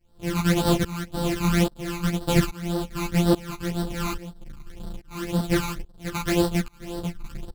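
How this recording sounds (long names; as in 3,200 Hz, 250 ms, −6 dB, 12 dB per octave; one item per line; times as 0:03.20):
a buzz of ramps at a fixed pitch in blocks of 256 samples
phaser sweep stages 12, 1.9 Hz, lowest notch 540–2,300 Hz
tremolo saw up 1.2 Hz, depth 95%
a shimmering, thickened sound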